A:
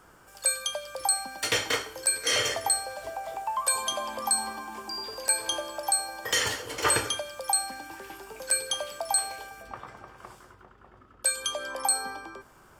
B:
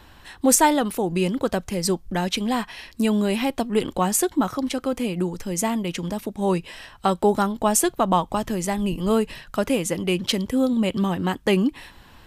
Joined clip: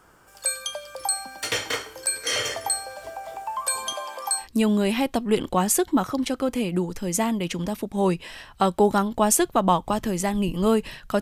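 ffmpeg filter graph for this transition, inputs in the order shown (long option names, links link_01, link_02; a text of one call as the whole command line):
ffmpeg -i cue0.wav -i cue1.wav -filter_complex "[0:a]asettb=1/sr,asplit=3[link_01][link_02][link_03];[link_01]atrim=end=3.934[link_04];[link_02]atrim=start=3.93:end=4.48,asetpts=PTS-STARTPTS,afade=type=in:duration=0.004:curve=qsin,afade=type=out:start_time=0.546:duration=0.004:curve=qsin,highpass=frequency=400:width=0.5412,highpass=frequency=400:width=1.3066[link_05];[link_03]atrim=start=4.476[link_06];[link_04][link_05]acrossfade=duration=0.004:curve1=hsin:curve2=qsin[link_07];[link_07][link_06]acrossfade=duration=0.004:curve1=qsin:curve2=hsin,apad=whole_dur=11.21,atrim=end=11.21,atrim=end=4.48,asetpts=PTS-STARTPTS[link_08];[1:a]atrim=start=2.8:end=9.65,asetpts=PTS-STARTPTS[link_09];[link_08][link_09]acrossfade=duration=0.12:curve1=tri:curve2=tri" out.wav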